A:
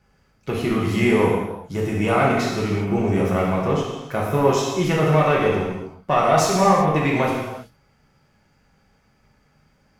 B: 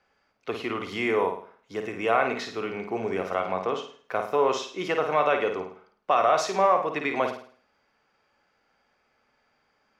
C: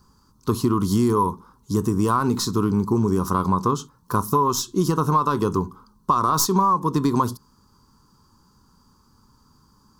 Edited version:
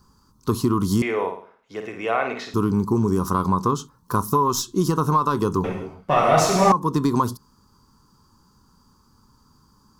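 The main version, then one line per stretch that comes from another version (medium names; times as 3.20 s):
C
1.02–2.54 s: from B
5.64–6.72 s: from A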